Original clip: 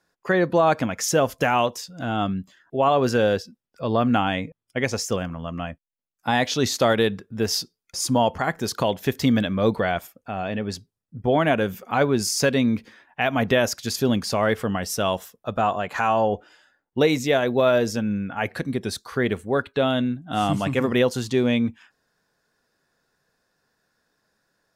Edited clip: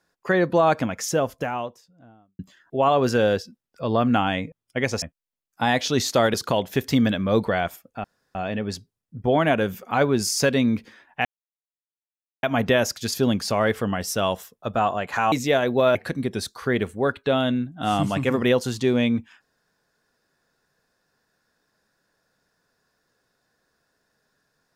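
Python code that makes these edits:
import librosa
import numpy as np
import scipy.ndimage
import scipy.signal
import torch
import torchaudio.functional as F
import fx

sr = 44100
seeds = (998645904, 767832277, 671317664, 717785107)

y = fx.studio_fade_out(x, sr, start_s=0.62, length_s=1.77)
y = fx.edit(y, sr, fx.cut(start_s=5.02, length_s=0.66),
    fx.cut(start_s=7.0, length_s=1.65),
    fx.insert_room_tone(at_s=10.35, length_s=0.31),
    fx.insert_silence(at_s=13.25, length_s=1.18),
    fx.cut(start_s=16.14, length_s=0.98),
    fx.cut(start_s=17.75, length_s=0.7), tone=tone)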